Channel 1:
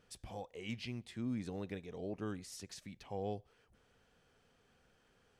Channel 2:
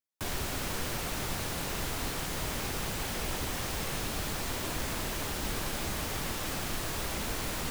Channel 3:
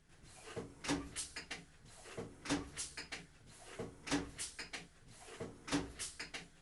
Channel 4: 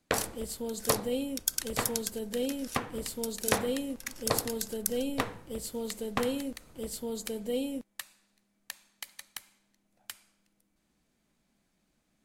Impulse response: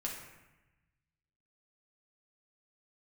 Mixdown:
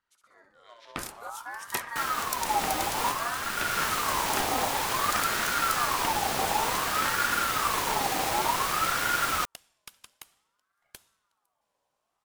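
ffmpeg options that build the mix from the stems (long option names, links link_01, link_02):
-filter_complex "[0:a]volume=-12dB,asplit=3[link_01][link_02][link_03];[link_02]volume=-5dB[link_04];[1:a]adelay=1750,volume=-3.5dB,asplit=2[link_05][link_06];[link_06]volume=-5.5dB[link_07];[2:a]adelay=1300,volume=-9dB[link_08];[3:a]adelay=850,volume=-11dB[link_09];[link_03]apad=whole_len=416812[link_10];[link_05][link_10]sidechaincompress=threshold=-59dB:ratio=8:attack=25:release=490[link_11];[4:a]atrim=start_sample=2205[link_12];[link_07][link_12]afir=irnorm=-1:irlink=0[link_13];[link_04]aecho=0:1:64|128|192|256|320|384|448|512:1|0.53|0.281|0.149|0.0789|0.0418|0.0222|0.0117[link_14];[link_01][link_11][link_08][link_09][link_13][link_14]amix=inputs=6:normalize=0,dynaudnorm=framelen=190:gausssize=9:maxgain=9dB,aeval=exprs='val(0)*sin(2*PI*1100*n/s+1100*0.3/0.55*sin(2*PI*0.55*n/s))':channel_layout=same"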